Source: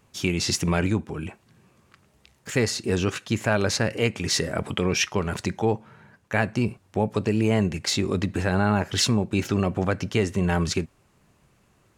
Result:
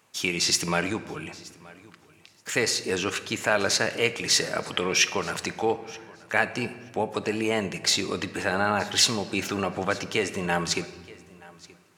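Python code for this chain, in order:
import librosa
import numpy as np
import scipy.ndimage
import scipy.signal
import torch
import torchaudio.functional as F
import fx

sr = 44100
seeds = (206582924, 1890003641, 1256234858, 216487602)

p1 = fx.highpass(x, sr, hz=710.0, slope=6)
p2 = p1 + fx.echo_feedback(p1, sr, ms=926, feedback_pct=16, wet_db=-22.0, dry=0)
p3 = fx.room_shoebox(p2, sr, seeds[0], volume_m3=2000.0, walls='mixed', distance_m=0.5)
y = p3 * librosa.db_to_amplitude(3.0)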